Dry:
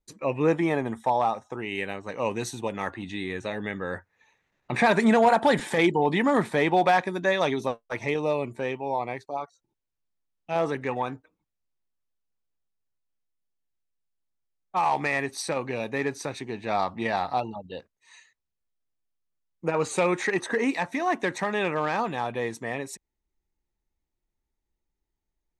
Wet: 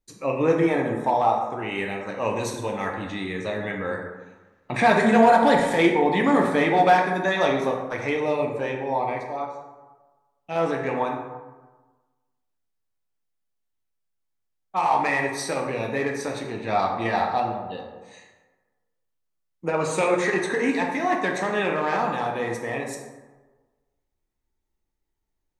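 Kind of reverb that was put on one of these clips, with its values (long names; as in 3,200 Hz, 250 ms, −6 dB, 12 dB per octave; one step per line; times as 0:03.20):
dense smooth reverb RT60 1.3 s, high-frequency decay 0.45×, DRR 0 dB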